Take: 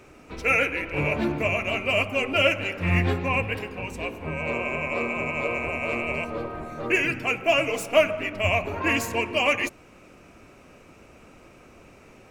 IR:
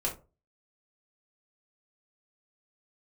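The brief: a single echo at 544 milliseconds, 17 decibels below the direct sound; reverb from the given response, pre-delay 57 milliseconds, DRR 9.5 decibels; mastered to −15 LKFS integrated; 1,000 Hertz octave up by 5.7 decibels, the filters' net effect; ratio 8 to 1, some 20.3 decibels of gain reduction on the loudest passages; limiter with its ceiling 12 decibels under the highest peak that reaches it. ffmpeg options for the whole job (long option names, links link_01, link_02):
-filter_complex "[0:a]equalizer=frequency=1000:width_type=o:gain=7.5,acompressor=threshold=-32dB:ratio=8,alimiter=level_in=8dB:limit=-24dB:level=0:latency=1,volume=-8dB,aecho=1:1:544:0.141,asplit=2[link_01][link_02];[1:a]atrim=start_sample=2205,adelay=57[link_03];[link_02][link_03]afir=irnorm=-1:irlink=0,volume=-14.5dB[link_04];[link_01][link_04]amix=inputs=2:normalize=0,volume=25.5dB"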